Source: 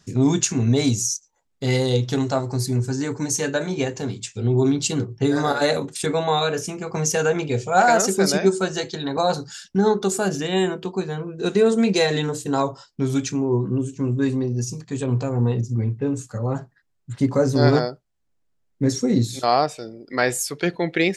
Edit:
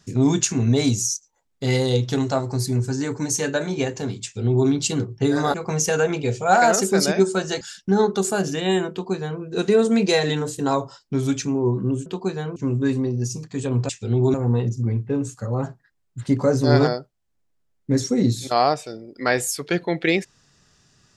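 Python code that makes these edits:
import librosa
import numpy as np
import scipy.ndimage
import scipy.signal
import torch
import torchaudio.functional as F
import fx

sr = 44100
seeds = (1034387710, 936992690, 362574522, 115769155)

y = fx.edit(x, sr, fx.duplicate(start_s=4.23, length_s=0.45, to_s=15.26),
    fx.cut(start_s=5.54, length_s=1.26),
    fx.cut(start_s=8.87, length_s=0.61),
    fx.duplicate(start_s=10.78, length_s=0.5, to_s=13.93), tone=tone)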